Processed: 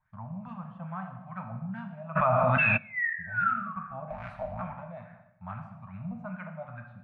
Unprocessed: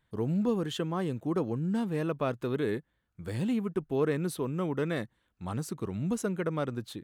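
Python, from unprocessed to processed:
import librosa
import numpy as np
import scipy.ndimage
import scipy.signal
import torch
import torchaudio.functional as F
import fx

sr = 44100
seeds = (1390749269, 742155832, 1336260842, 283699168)

p1 = fx.cycle_switch(x, sr, every=3, mode='inverted', at=(4.1, 4.62))
p2 = scipy.signal.sosfilt(scipy.signal.ellip(3, 1.0, 50, [210.0, 650.0], 'bandstop', fs=sr, output='sos'), p1)
p3 = fx.peak_eq(p2, sr, hz=2400.0, db=12.0, octaves=0.32)
p4 = fx.spec_paint(p3, sr, seeds[0], shape='fall', start_s=2.58, length_s=1.15, low_hz=1100.0, high_hz=2700.0, level_db=-26.0)
p5 = fx.harmonic_tremolo(p4, sr, hz=1.3, depth_pct=50, crossover_hz=2300.0)
p6 = p5 + fx.echo_wet_lowpass(p5, sr, ms=79, feedback_pct=67, hz=2000.0, wet_db=-16.0, dry=0)
p7 = fx.filter_lfo_lowpass(p6, sr, shape='sine', hz=2.4, low_hz=540.0, high_hz=1600.0, q=3.0)
p8 = fx.rev_gated(p7, sr, seeds[1], gate_ms=300, shape='falling', drr_db=3.5)
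p9 = fx.env_flatten(p8, sr, amount_pct=100, at=(2.15, 2.76), fade=0.02)
y = p9 * librosa.db_to_amplitude(-4.5)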